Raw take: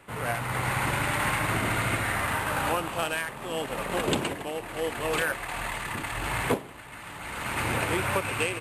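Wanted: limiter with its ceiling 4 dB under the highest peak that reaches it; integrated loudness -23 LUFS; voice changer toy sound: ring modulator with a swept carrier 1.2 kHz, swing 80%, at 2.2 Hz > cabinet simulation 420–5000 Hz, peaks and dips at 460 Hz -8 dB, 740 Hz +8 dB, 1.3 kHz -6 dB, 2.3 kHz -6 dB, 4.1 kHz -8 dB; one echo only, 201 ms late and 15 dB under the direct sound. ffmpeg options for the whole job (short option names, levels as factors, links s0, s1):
-af "alimiter=limit=0.119:level=0:latency=1,aecho=1:1:201:0.178,aeval=exprs='val(0)*sin(2*PI*1200*n/s+1200*0.8/2.2*sin(2*PI*2.2*n/s))':c=same,highpass=420,equalizer=f=460:t=q:w=4:g=-8,equalizer=f=740:t=q:w=4:g=8,equalizer=f=1300:t=q:w=4:g=-6,equalizer=f=2300:t=q:w=4:g=-6,equalizer=f=4100:t=q:w=4:g=-8,lowpass=f=5000:w=0.5412,lowpass=f=5000:w=1.3066,volume=3.76"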